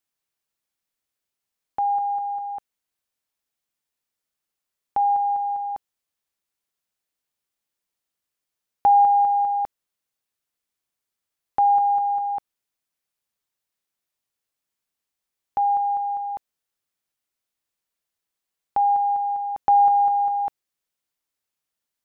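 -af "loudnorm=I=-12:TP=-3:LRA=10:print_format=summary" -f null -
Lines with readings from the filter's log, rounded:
Input Integrated:    -21.5 LUFS
Input True Peak:     -10.9 dBTP
Input LRA:             7.7 LU
Input Threshold:     -31.9 LUFS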